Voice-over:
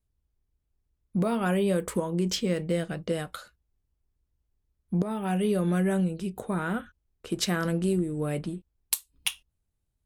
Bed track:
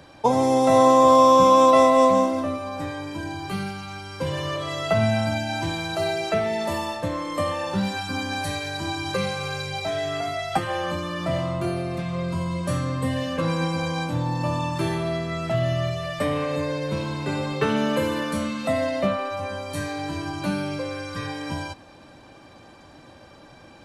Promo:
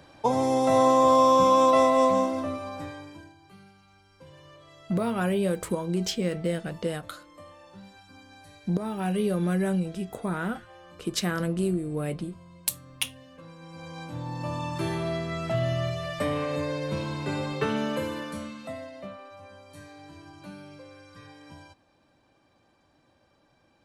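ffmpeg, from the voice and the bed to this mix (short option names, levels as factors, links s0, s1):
-filter_complex "[0:a]adelay=3750,volume=0.944[s0];[1:a]volume=5.62,afade=t=out:st=2.65:d=0.69:silence=0.11885,afade=t=in:st=13.62:d=1.41:silence=0.105925,afade=t=out:st=17.41:d=1.49:silence=0.199526[s1];[s0][s1]amix=inputs=2:normalize=0"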